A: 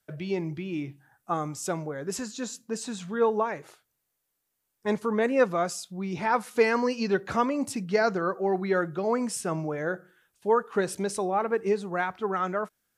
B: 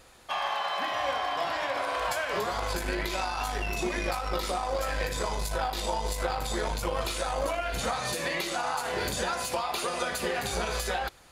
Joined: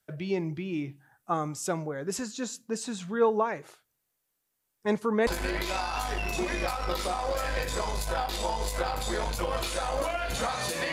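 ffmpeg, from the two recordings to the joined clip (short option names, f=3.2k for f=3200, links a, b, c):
-filter_complex "[0:a]apad=whole_dur=10.92,atrim=end=10.92,atrim=end=5.272[a];[1:a]atrim=start=2.708:end=8.36[b];[a][b]acrossfade=d=0.004:c1=hsin:c2=hsin"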